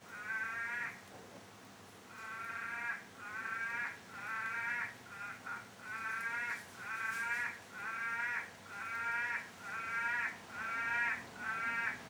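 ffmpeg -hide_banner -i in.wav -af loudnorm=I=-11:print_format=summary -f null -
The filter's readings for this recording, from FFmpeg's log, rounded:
Input Integrated:    -38.6 LUFS
Input True Peak:     -23.1 dBTP
Input LRA:             5.3 LU
Input Threshold:     -49.0 LUFS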